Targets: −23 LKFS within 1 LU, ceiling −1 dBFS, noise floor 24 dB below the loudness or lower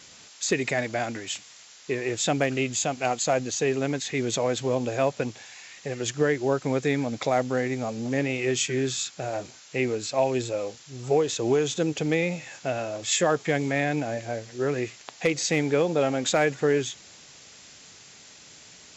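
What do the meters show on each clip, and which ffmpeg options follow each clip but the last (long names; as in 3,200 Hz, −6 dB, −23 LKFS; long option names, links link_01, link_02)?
background noise floor −50 dBFS; target noise floor −51 dBFS; integrated loudness −26.5 LKFS; sample peak −11.5 dBFS; target loudness −23.0 LKFS
→ -af "afftdn=noise_reduction=6:noise_floor=-50"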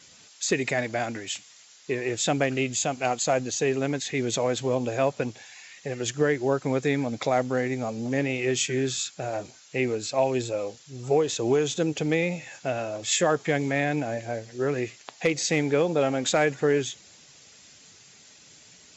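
background noise floor −53 dBFS; integrated loudness −26.5 LKFS; sample peak −11.5 dBFS; target loudness −23.0 LKFS
→ -af "volume=3.5dB"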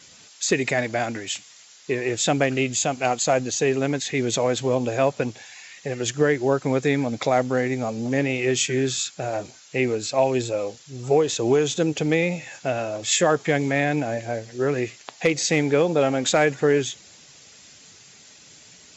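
integrated loudness −23.0 LKFS; sample peak −8.0 dBFS; background noise floor −50 dBFS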